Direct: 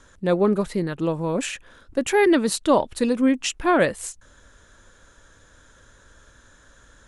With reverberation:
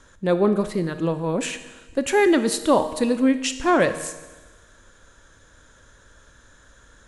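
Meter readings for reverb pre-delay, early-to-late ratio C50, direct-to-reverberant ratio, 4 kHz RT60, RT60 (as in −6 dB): 22 ms, 12.0 dB, 10.5 dB, 1.3 s, 1.2 s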